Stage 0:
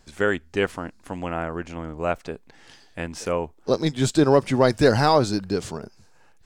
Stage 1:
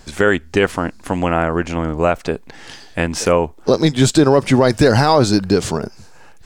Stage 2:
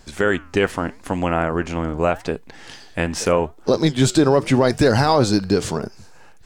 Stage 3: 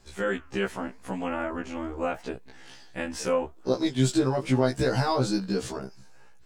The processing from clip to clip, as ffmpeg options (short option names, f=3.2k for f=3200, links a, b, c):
-filter_complex "[0:a]asplit=2[a][b];[b]acompressor=threshold=-27dB:ratio=6,volume=0dB[c];[a][c]amix=inputs=2:normalize=0,alimiter=level_in=8dB:limit=-1dB:release=50:level=0:latency=1,volume=-1dB"
-af "dynaudnorm=f=130:g=7:m=11.5dB,flanger=delay=3.2:depth=6.6:regen=-89:speed=0.83:shape=sinusoidal"
-af "afftfilt=real='re*1.73*eq(mod(b,3),0)':imag='im*1.73*eq(mod(b,3),0)':win_size=2048:overlap=0.75,volume=-7dB"